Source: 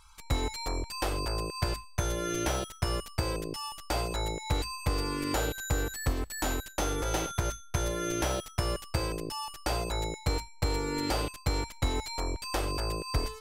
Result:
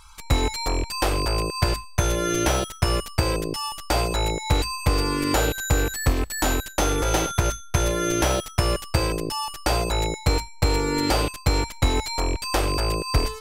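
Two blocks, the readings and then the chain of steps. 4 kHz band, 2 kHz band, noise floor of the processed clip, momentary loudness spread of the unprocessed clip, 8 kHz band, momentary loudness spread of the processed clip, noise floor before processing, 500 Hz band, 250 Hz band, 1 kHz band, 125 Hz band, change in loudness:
+8.5 dB, +9.0 dB, -40 dBFS, 3 LU, +8.5 dB, 3 LU, -49 dBFS, +8.5 dB, +8.5 dB, +8.5 dB, +8.5 dB, +8.5 dB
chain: rattle on loud lows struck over -30 dBFS, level -34 dBFS; trim +8.5 dB

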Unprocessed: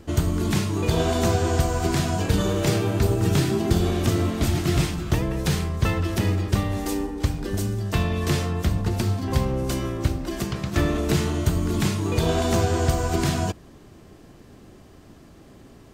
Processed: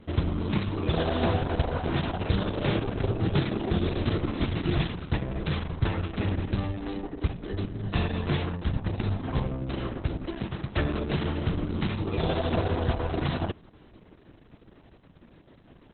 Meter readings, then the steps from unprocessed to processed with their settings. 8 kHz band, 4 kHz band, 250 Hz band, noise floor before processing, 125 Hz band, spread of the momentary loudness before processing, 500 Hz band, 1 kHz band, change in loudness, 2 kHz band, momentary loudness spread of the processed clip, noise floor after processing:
under -40 dB, -5.5 dB, -5.0 dB, -48 dBFS, -5.5 dB, 5 LU, -5.5 dB, -5.0 dB, -5.5 dB, -4.5 dB, 6 LU, -55 dBFS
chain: trim -4 dB; Opus 6 kbps 48 kHz

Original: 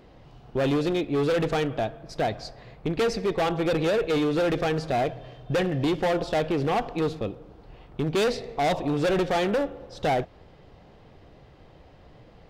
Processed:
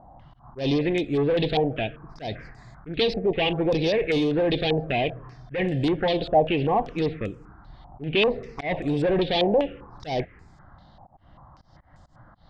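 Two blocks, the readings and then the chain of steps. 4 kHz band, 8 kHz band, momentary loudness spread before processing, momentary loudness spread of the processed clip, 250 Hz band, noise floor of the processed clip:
+5.0 dB, under -10 dB, 9 LU, 13 LU, +1.5 dB, -55 dBFS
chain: touch-sensitive phaser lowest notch 410 Hz, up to 1.4 kHz, full sweep at -21 dBFS; slow attack 138 ms; step-sequenced low-pass 5.1 Hz 780–7400 Hz; trim +2 dB

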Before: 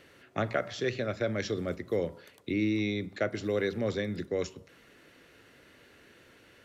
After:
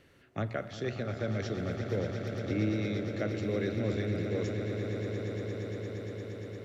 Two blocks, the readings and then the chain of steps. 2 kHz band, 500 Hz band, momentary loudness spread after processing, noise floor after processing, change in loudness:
-4.0 dB, -2.0 dB, 7 LU, -61 dBFS, -2.0 dB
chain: bass shelf 200 Hz +11 dB; on a send: echo with a slow build-up 116 ms, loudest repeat 8, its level -11.5 dB; on the sum: trim -7 dB

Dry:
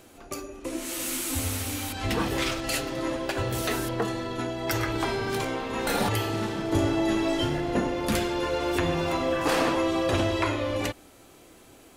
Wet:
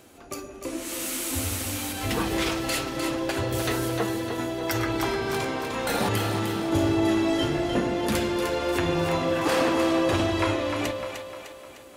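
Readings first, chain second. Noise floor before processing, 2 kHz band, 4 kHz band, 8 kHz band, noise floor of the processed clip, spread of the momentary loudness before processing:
-53 dBFS, +1.0 dB, +1.0 dB, +1.0 dB, -45 dBFS, 6 LU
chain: high-pass 47 Hz; on a send: two-band feedback delay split 430 Hz, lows 139 ms, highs 303 ms, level -6.5 dB

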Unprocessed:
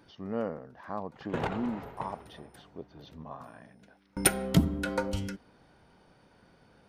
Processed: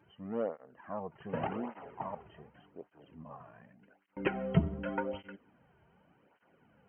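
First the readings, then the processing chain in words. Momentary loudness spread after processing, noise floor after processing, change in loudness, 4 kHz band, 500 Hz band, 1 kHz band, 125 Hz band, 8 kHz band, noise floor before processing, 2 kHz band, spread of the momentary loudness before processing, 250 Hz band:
22 LU, -70 dBFS, -5.0 dB, -13.0 dB, -2.0 dB, -3.5 dB, -4.0 dB, under -40 dB, -63 dBFS, -6.0 dB, 21 LU, -5.5 dB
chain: dynamic bell 640 Hz, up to +5 dB, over -43 dBFS, Q 1.2; brick-wall FIR low-pass 3.2 kHz; cancelling through-zero flanger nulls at 0.86 Hz, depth 4.1 ms; trim -3 dB

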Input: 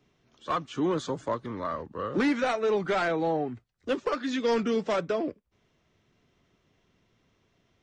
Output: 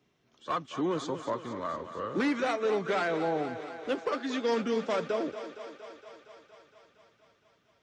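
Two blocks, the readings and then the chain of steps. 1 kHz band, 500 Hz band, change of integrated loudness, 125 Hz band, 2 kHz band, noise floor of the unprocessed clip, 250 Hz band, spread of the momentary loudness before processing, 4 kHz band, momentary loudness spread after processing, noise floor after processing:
-2.0 dB, -2.5 dB, -2.5 dB, -4.5 dB, -2.0 dB, -71 dBFS, -3.0 dB, 8 LU, -2.0 dB, 16 LU, -70 dBFS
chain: high-pass 130 Hz 6 dB/octave; on a send: thinning echo 232 ms, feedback 76%, high-pass 260 Hz, level -11 dB; on the sum: trim -2.5 dB

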